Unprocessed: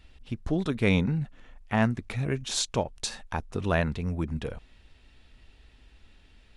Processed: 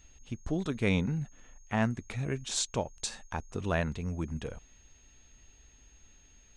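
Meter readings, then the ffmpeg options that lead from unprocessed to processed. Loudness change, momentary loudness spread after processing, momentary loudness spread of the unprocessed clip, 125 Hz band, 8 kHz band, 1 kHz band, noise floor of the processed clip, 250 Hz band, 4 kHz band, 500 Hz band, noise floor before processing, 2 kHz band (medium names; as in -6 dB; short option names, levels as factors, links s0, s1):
-4.5 dB, 13 LU, 13 LU, -4.5 dB, -1.5 dB, -4.5 dB, -60 dBFS, -4.5 dB, -4.5 dB, -4.5 dB, -58 dBFS, -4.5 dB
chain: -af "aeval=exprs='val(0)+0.001*sin(2*PI*6500*n/s)':c=same,aexciter=amount=1.3:drive=4.3:freq=6500,volume=0.596"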